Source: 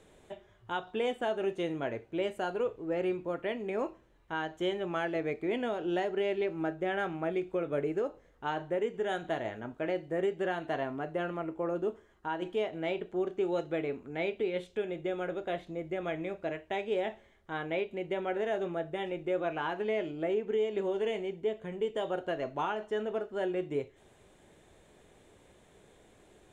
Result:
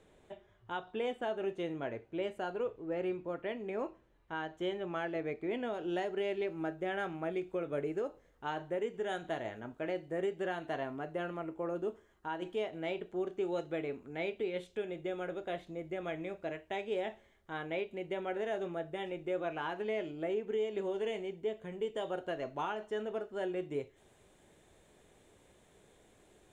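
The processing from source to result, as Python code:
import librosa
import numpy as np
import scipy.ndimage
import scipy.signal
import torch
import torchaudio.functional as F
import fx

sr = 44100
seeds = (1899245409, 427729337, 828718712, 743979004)

y = fx.high_shelf(x, sr, hz=5700.0, db=fx.steps((0.0, -6.5), (5.73, 4.5)))
y = y * librosa.db_to_amplitude(-4.0)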